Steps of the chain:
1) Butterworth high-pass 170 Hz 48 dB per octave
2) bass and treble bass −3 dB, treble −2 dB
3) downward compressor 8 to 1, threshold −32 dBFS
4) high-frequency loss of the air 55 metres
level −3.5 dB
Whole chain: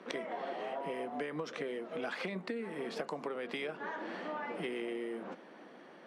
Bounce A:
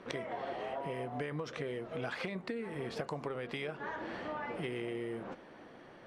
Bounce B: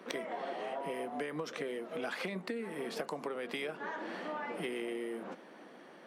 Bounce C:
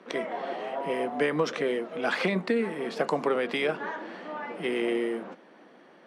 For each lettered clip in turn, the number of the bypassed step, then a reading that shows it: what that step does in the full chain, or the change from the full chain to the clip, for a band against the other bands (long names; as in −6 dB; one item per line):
1, 125 Hz band +8.0 dB
4, 8 kHz band +5.0 dB
3, average gain reduction 7.0 dB